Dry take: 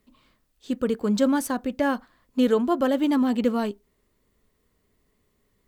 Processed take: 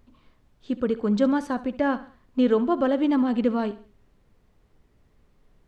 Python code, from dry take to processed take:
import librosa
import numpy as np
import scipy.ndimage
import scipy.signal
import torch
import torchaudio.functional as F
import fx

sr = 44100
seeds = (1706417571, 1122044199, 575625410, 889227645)

p1 = scipy.signal.sosfilt(scipy.signal.butter(2, 5300.0, 'lowpass', fs=sr, output='sos'), x)
p2 = fx.high_shelf(p1, sr, hz=3900.0, db=-8.5)
p3 = fx.dmg_noise_colour(p2, sr, seeds[0], colour='brown', level_db=-59.0)
y = p3 + fx.echo_feedback(p3, sr, ms=68, feedback_pct=39, wet_db=-16.0, dry=0)